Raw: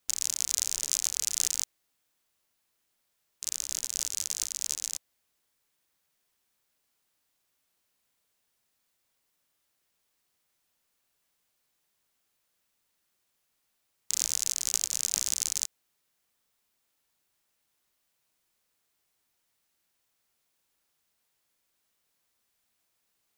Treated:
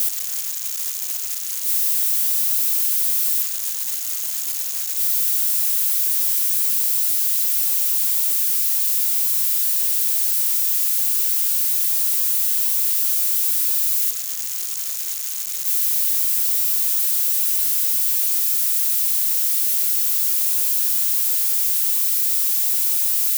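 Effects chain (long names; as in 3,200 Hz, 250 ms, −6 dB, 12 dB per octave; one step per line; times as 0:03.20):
spike at every zero crossing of −18.5 dBFS
high-shelf EQ 11,000 Hz +3.5 dB
brickwall limiter −12.5 dBFS, peak gain reduction 9 dB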